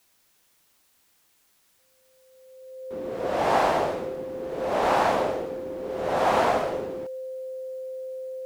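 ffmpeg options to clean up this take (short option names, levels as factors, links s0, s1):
-af "bandreject=f=520:w=30,agate=range=0.0891:threshold=0.00141"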